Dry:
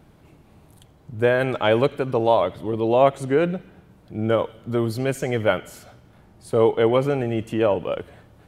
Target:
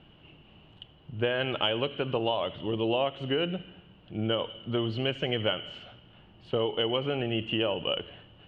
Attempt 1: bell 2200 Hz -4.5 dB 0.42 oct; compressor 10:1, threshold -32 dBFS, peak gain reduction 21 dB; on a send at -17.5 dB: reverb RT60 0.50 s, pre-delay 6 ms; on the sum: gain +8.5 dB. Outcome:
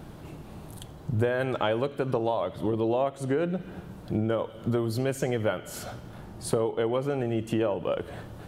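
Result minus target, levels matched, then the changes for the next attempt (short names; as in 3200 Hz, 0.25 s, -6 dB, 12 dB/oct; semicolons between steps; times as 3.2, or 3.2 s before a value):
4000 Hz band -13.5 dB
add first: ladder low-pass 3000 Hz, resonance 90%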